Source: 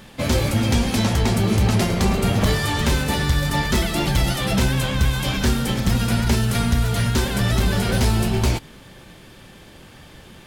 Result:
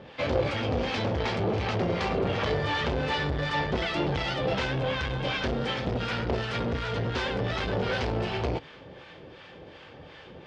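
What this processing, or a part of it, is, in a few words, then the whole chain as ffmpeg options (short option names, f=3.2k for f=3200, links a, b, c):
guitar amplifier with harmonic tremolo: -filter_complex "[0:a]bandreject=f=700:w=12,acrossover=split=820[a][b];[a]aeval=exprs='val(0)*(1-0.7/2+0.7/2*cos(2*PI*2.7*n/s))':c=same[c];[b]aeval=exprs='val(0)*(1-0.7/2-0.7/2*cos(2*PI*2.7*n/s))':c=same[d];[c][d]amix=inputs=2:normalize=0,asoftclip=type=tanh:threshold=-23dB,highpass=85,equalizer=f=120:t=q:w=4:g=-5,equalizer=f=210:t=q:w=4:g=-9,equalizer=f=490:t=q:w=4:g=7,equalizer=f=710:t=q:w=4:g=5,equalizer=f=4k:t=q:w=4:g=-4,lowpass=f=4.3k:w=0.5412,lowpass=f=4.3k:w=1.3066,volume=1.5dB"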